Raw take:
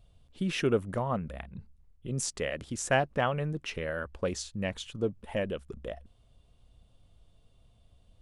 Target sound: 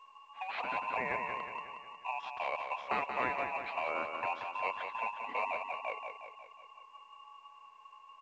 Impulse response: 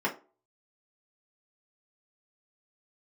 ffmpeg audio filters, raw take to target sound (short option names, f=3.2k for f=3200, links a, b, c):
-af "afftfilt=real='real(if(between(b,1,1012),(2*floor((b-1)/92)+1)*92-b,b),0)':imag='imag(if(between(b,1,1012),(2*floor((b-1)/92)+1)*92-b,b),0)*if(between(b,1,1012),-1,1)':win_size=2048:overlap=0.75,afftfilt=real='re*lt(hypot(re,im),0.224)':imag='im*lt(hypot(re,im),0.224)':win_size=1024:overlap=0.75,adynamicequalizer=threshold=0.002:dfrequency=720:dqfactor=4.6:tfrequency=720:tqfactor=4.6:attack=5:release=100:ratio=0.375:range=2.5:mode=cutabove:tftype=bell,aeval=exprs='val(0)*sin(2*PI*850*n/s)':c=same,asoftclip=type=tanh:threshold=-19dB,highpass=130,equalizer=f=150:t=q:w=4:g=-9,equalizer=f=320:t=q:w=4:g=-5,equalizer=f=730:t=q:w=4:g=5,equalizer=f=1.1k:t=q:w=4:g=7,lowpass=f=2.7k:w=0.5412,lowpass=f=2.7k:w=1.3066,aecho=1:1:181|362|543|724|905|1086|1267:0.473|0.251|0.133|0.0704|0.0373|0.0198|0.0105" -ar 16000 -c:a pcm_mulaw